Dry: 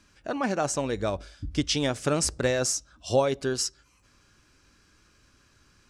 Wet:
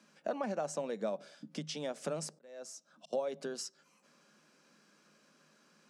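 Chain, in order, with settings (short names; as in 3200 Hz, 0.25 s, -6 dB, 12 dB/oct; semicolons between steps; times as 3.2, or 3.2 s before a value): compressor 8:1, threshold -33 dBFS, peak gain reduction 16 dB; 2.29–3.13 auto swell 0.739 s; rippled Chebyshev high-pass 150 Hz, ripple 9 dB; gain +3.5 dB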